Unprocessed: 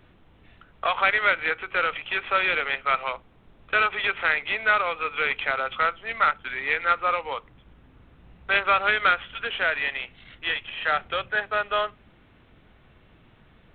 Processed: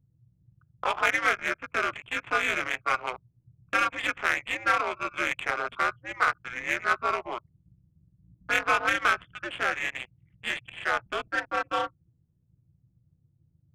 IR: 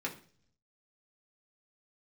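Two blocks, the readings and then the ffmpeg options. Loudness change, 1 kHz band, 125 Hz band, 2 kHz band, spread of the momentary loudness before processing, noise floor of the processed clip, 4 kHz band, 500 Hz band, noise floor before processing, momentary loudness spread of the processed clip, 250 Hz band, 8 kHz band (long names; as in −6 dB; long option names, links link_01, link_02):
−3.5 dB, −3.0 dB, −1.0 dB, −3.5 dB, 9 LU, −69 dBFS, −5.0 dB, −4.0 dB, −56 dBFS, 9 LU, +3.5 dB, can't be measured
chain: -af "anlmdn=1.58,adynamicsmooth=sensitivity=2:basefreq=1900,aeval=exprs='val(0)*sin(2*PI*120*n/s)':channel_layout=same"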